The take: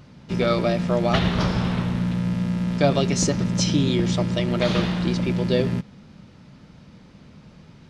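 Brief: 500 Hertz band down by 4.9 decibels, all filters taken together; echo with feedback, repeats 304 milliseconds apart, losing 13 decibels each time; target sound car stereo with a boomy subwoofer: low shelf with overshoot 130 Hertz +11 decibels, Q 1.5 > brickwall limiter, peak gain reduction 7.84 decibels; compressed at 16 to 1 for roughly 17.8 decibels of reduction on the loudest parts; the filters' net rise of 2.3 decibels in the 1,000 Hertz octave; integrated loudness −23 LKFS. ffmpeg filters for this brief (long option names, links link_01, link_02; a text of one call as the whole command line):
ffmpeg -i in.wav -af "equalizer=frequency=500:width_type=o:gain=-7.5,equalizer=frequency=1000:width_type=o:gain=6,acompressor=threshold=-34dB:ratio=16,lowshelf=frequency=130:width_type=q:width=1.5:gain=11,aecho=1:1:304|608|912:0.224|0.0493|0.0108,volume=15.5dB,alimiter=limit=-12.5dB:level=0:latency=1" out.wav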